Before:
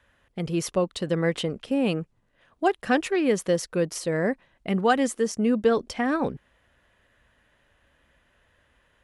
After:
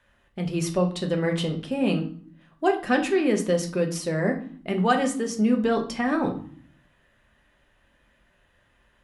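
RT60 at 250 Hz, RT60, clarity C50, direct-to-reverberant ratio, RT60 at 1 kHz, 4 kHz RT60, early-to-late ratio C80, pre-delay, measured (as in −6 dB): 0.80 s, 0.55 s, 11.0 dB, 2.5 dB, 0.50 s, 0.40 s, 15.5 dB, 3 ms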